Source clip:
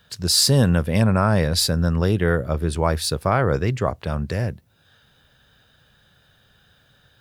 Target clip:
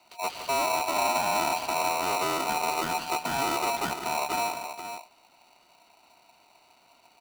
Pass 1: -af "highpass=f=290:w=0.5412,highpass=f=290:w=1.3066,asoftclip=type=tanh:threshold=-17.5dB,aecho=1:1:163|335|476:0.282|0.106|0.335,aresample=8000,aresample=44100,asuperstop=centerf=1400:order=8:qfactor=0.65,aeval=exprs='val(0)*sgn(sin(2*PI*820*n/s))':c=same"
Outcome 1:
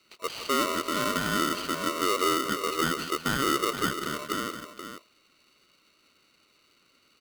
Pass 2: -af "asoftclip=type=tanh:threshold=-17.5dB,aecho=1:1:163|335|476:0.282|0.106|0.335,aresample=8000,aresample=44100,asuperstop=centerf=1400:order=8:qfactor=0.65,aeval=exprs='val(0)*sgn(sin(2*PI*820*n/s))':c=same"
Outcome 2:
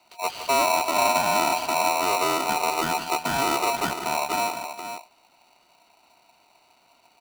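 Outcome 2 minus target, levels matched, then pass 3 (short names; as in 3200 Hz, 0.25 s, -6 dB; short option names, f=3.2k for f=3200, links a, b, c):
soft clip: distortion -5 dB
-af "asoftclip=type=tanh:threshold=-24.5dB,aecho=1:1:163|335|476:0.282|0.106|0.335,aresample=8000,aresample=44100,asuperstop=centerf=1400:order=8:qfactor=0.65,aeval=exprs='val(0)*sgn(sin(2*PI*820*n/s))':c=same"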